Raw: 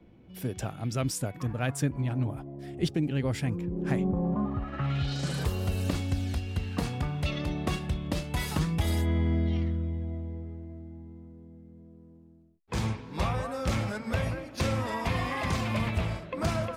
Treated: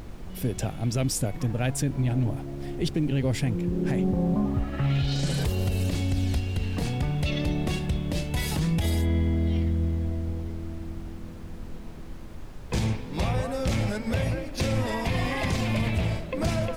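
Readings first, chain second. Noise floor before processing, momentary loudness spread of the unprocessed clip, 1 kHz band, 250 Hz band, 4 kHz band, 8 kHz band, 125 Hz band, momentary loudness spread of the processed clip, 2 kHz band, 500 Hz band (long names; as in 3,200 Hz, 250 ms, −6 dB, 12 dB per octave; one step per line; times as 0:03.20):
−54 dBFS, 10 LU, −0.5 dB, +3.5 dB, +3.5 dB, +4.5 dB, +4.0 dB, 13 LU, +2.0 dB, +3.0 dB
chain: parametric band 1,200 Hz −9 dB 0.78 octaves
brickwall limiter −23 dBFS, peak gain reduction 8.5 dB
background noise brown −43 dBFS
level +5.5 dB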